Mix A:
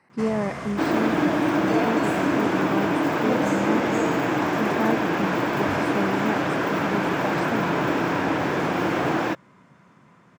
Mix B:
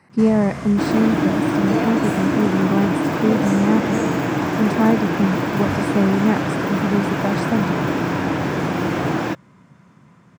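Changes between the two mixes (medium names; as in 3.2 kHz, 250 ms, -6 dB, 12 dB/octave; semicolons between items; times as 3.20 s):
speech +5.5 dB; master: add tone controls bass +8 dB, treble +4 dB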